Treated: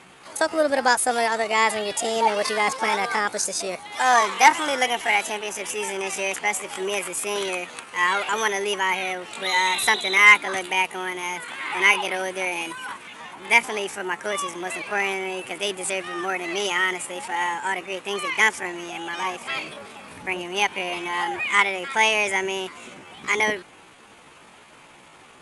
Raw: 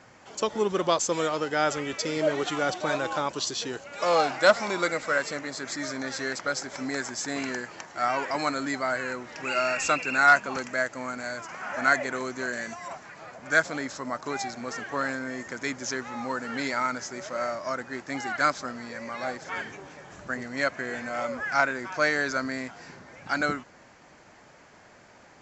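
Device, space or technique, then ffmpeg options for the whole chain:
chipmunk voice: -af "asetrate=64194,aresample=44100,atempo=0.686977,volume=5dB"

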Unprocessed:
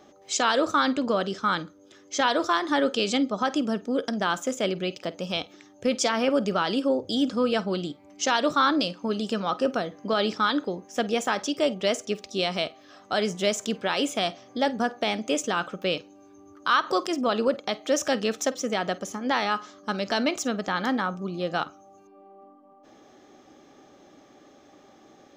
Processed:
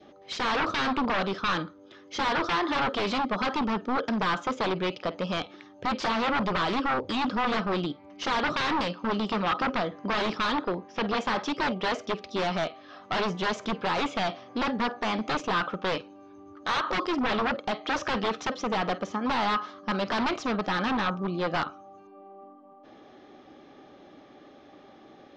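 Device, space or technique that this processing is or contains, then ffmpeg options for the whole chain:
synthesiser wavefolder: -filter_complex "[0:a]aeval=exprs='0.0562*(abs(mod(val(0)/0.0562+3,4)-2)-1)':channel_layout=same,lowpass=frequency=4400:width=0.5412,lowpass=frequency=4400:width=1.3066,asettb=1/sr,asplit=3[link_01][link_02][link_03];[link_01]atrim=end=10.524[link_04];[link_02]atrim=start=10.52:end=11.17,asetpts=PTS-STARTPTS,afade=type=in:duration=0.004:curve=qsin,afade=type=out:start_time=0.646:duration=0.004:curve=qsin,lowpass=frequency=5700:width=0.5412,lowpass=frequency=5700:width=1.3066[link_05];[link_03]atrim=start=11.166[link_06];[link_04][link_05]acrossfade=duration=0.004:curve1=hsin:curve2=qsin[link_07];[link_07][link_06]acrossfade=duration=0.004:curve1=qsin:curve2=hsin,adynamicequalizer=threshold=0.00501:dfrequency=1100:dqfactor=1.6:tfrequency=1100:tqfactor=1.6:attack=5:release=100:ratio=0.375:range=3:mode=boostabove:tftype=bell,volume=2dB"

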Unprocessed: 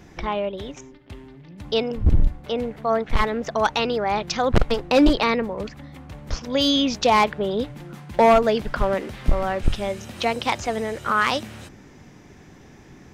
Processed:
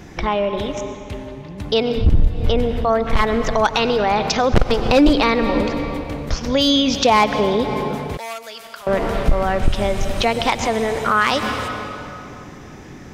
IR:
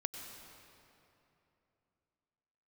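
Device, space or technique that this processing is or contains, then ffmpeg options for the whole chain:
ducked reverb: -filter_complex "[0:a]asplit=3[link_01][link_02][link_03];[1:a]atrim=start_sample=2205[link_04];[link_02][link_04]afir=irnorm=-1:irlink=0[link_05];[link_03]apad=whole_len=579173[link_06];[link_05][link_06]sidechaincompress=threshold=-24dB:ratio=8:attack=5.5:release=168,volume=5dB[link_07];[link_01][link_07]amix=inputs=2:normalize=0,asettb=1/sr,asplit=3[link_08][link_09][link_10];[link_08]atrim=end=8.174[link_11];[link_09]atrim=start=8.17:end=8.87,asetpts=PTS-STARTPTS,afade=type=in:duration=0.004:curve=qsin,afade=type=out:start_time=0.696:duration=0.004:curve=qsin,aderivative[link_12];[link_10]atrim=start=8.866[link_13];[link_11][link_12]acrossfade=duration=0.004:curve1=hsin:curve2=qsin[link_14];[link_14][link_13]acrossfade=duration=0.004:curve1=qsin:curve2=hsin"

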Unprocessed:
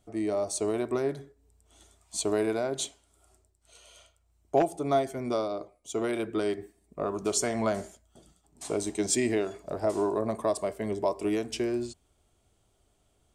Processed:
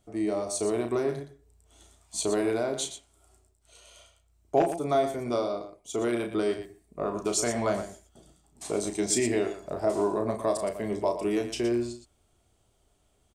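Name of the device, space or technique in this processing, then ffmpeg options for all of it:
slapback doubling: -filter_complex "[0:a]asplit=3[link_01][link_02][link_03];[link_02]adelay=34,volume=-7dB[link_04];[link_03]adelay=118,volume=-10dB[link_05];[link_01][link_04][link_05]amix=inputs=3:normalize=0"

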